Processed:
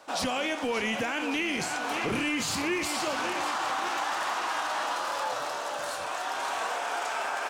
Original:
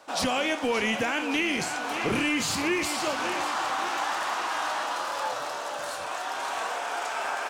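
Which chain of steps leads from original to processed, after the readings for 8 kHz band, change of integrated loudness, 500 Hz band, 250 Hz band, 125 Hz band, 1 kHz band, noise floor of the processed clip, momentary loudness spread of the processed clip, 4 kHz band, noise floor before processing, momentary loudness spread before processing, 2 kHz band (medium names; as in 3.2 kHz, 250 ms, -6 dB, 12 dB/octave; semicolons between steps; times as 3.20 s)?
-1.5 dB, -1.5 dB, -2.0 dB, -2.5 dB, -2.5 dB, -1.0 dB, -34 dBFS, 4 LU, -2.0 dB, -34 dBFS, 7 LU, -2.0 dB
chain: peak limiter -21 dBFS, peak gain reduction 4 dB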